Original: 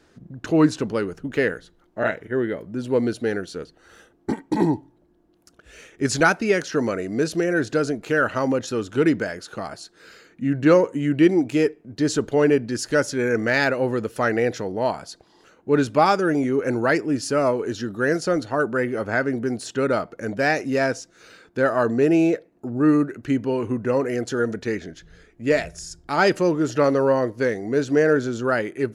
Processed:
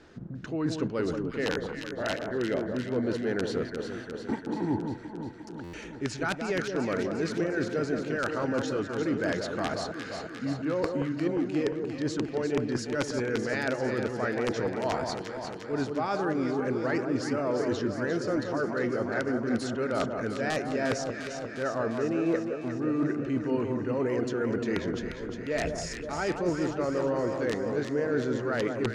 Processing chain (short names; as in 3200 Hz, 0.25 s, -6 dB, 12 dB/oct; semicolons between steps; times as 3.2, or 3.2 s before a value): reverse; compressor 16:1, threshold -30 dBFS, peak gain reduction 20.5 dB; reverse; wrapped overs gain 22 dB; air absorption 82 m; echo with dull and thin repeats by turns 0.176 s, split 1300 Hz, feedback 81%, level -5 dB; stuck buffer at 5.63, samples 512, times 8; gain +3.5 dB